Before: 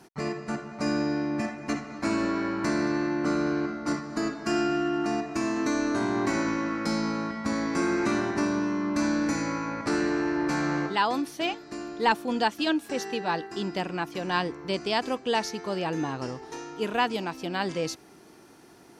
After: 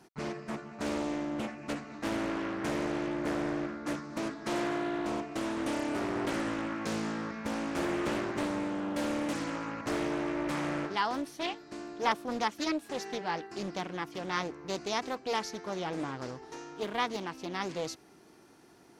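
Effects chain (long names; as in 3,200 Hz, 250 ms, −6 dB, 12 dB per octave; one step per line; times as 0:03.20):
highs frequency-modulated by the lows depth 0.75 ms
level −5.5 dB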